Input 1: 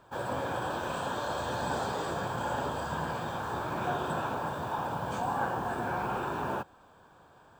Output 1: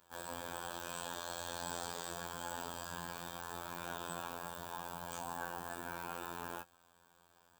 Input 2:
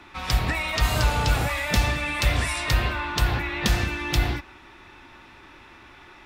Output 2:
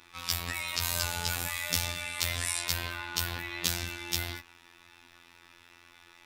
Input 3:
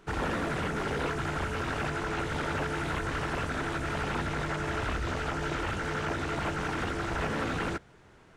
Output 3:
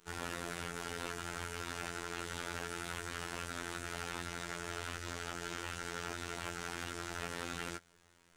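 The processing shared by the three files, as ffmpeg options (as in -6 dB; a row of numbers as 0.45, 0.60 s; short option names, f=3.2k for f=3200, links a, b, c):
-af "crystalizer=i=5.5:c=0,afftfilt=real='hypot(re,im)*cos(PI*b)':imag='0':win_size=2048:overlap=0.75,volume=-10.5dB"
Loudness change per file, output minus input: -10.0, -7.0, -9.5 LU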